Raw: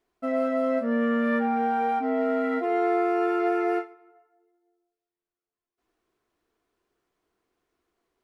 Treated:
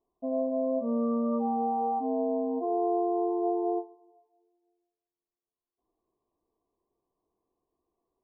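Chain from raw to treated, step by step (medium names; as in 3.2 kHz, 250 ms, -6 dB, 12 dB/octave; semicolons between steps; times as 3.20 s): brick-wall FIR low-pass 1.2 kHz; trim -3.5 dB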